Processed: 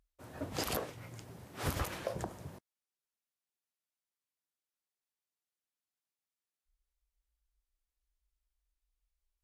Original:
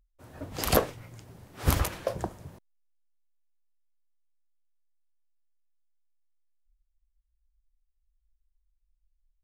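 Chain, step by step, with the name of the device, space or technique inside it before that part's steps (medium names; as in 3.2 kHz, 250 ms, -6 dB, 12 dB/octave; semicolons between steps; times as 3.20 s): podcast mastering chain (high-pass 110 Hz 6 dB/octave; compression 2.5:1, threshold -31 dBFS, peak gain reduction 10 dB; peak limiter -23 dBFS, peak gain reduction 9.5 dB; trim +1 dB; MP3 112 kbps 32 kHz)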